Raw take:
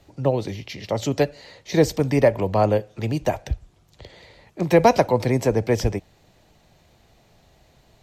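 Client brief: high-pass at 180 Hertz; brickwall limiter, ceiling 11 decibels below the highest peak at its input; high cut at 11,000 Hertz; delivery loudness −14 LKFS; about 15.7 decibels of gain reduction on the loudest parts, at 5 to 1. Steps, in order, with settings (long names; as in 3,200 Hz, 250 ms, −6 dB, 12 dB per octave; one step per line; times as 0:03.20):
high-pass filter 180 Hz
low-pass filter 11,000 Hz
downward compressor 5 to 1, threshold −29 dBFS
level +26 dB
brickwall limiter −2.5 dBFS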